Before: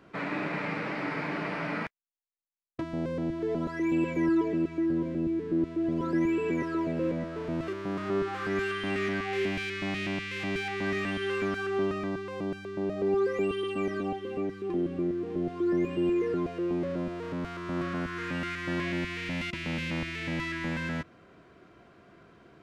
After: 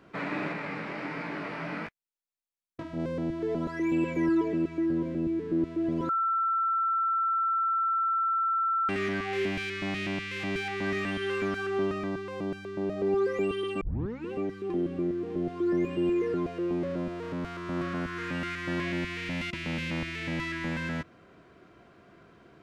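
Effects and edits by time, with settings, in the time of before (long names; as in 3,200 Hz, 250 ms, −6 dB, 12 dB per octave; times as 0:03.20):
0:00.53–0:03.00: chorus effect 1.4 Hz, delay 17 ms, depth 7.4 ms
0:06.09–0:08.89: beep over 1,340 Hz −24 dBFS
0:13.81: tape start 0.51 s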